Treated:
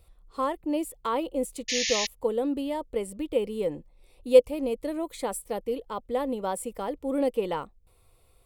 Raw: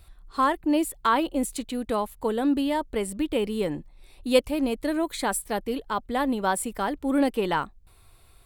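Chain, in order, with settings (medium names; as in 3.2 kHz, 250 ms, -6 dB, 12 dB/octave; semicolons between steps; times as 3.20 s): graphic EQ with 31 bands 500 Hz +12 dB, 1.6 kHz -10 dB, 4 kHz -4 dB; painted sound noise, 1.68–2.07 s, 1.7–7 kHz -22 dBFS; trim -6.5 dB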